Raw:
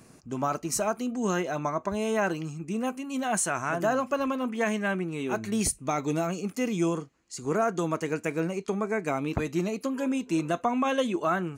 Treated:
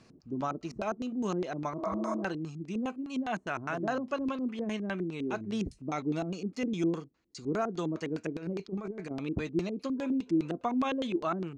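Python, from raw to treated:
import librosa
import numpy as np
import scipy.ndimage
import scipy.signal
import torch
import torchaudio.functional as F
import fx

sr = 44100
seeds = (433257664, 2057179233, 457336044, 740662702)

y = fx.spec_repair(x, sr, seeds[0], start_s=1.81, length_s=0.39, low_hz=310.0, high_hz=4500.0, source='before')
y = fx.over_compress(y, sr, threshold_db=-31.0, ratio=-0.5, at=(8.35, 9.11))
y = fx.filter_lfo_lowpass(y, sr, shape='square', hz=4.9, low_hz=330.0, high_hz=4500.0, q=1.8)
y = F.gain(torch.from_numpy(y), -5.5).numpy()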